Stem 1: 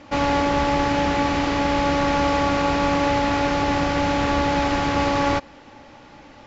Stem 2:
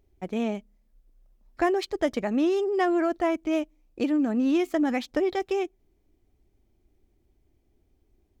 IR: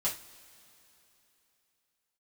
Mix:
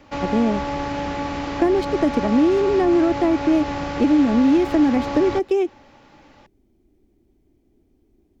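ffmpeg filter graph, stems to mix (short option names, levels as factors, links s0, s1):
-filter_complex "[0:a]volume=0.562[s0];[1:a]equalizer=f=270:t=o:w=1.6:g=11,volume=1.19[s1];[s0][s1]amix=inputs=2:normalize=0,acrossover=split=320|1200[s2][s3][s4];[s2]acompressor=threshold=0.112:ratio=4[s5];[s3]acompressor=threshold=0.112:ratio=4[s6];[s4]acompressor=threshold=0.02:ratio=4[s7];[s5][s6][s7]amix=inputs=3:normalize=0"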